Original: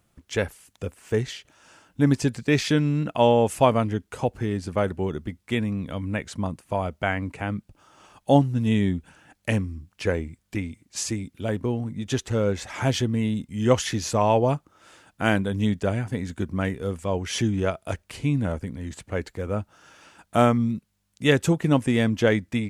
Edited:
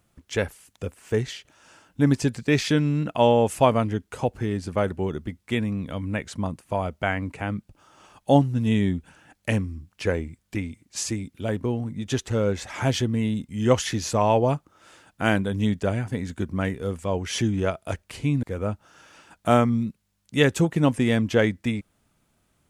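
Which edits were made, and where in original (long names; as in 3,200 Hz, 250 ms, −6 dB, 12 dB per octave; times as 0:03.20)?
0:18.43–0:19.31: remove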